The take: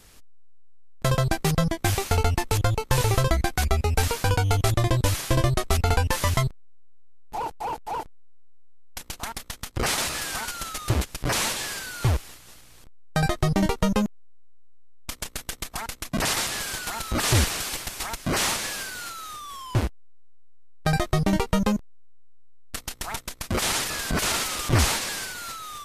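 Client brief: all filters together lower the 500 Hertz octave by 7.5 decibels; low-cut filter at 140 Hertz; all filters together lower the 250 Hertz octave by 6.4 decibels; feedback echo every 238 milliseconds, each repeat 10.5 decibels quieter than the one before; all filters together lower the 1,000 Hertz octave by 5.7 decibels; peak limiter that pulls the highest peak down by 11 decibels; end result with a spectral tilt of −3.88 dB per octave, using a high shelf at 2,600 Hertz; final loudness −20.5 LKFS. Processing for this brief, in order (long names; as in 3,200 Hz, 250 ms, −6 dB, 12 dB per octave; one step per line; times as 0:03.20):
high-pass filter 140 Hz
parametric band 250 Hz −6.5 dB
parametric band 500 Hz −6.5 dB
parametric band 1,000 Hz −4 dB
high-shelf EQ 2,600 Hz −5.5 dB
brickwall limiter −24 dBFS
repeating echo 238 ms, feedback 30%, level −10.5 dB
level +14 dB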